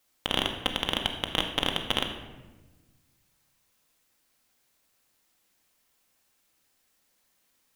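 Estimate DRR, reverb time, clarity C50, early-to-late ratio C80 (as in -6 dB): 3.5 dB, 1.2 s, 7.0 dB, 8.5 dB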